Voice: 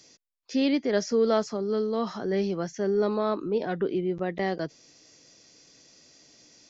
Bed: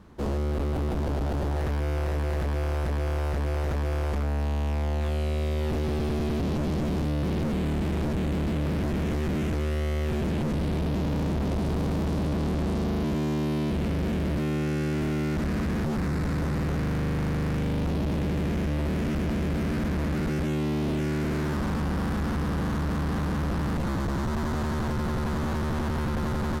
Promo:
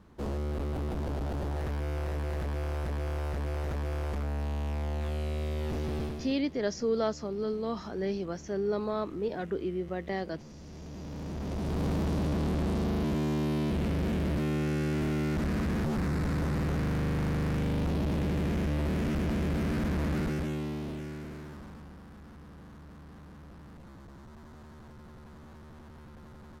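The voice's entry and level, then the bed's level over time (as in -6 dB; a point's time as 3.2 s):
5.70 s, -5.5 dB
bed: 6.03 s -5.5 dB
6.42 s -21.5 dB
10.55 s -21.5 dB
11.86 s -2.5 dB
20.18 s -2.5 dB
22.03 s -22 dB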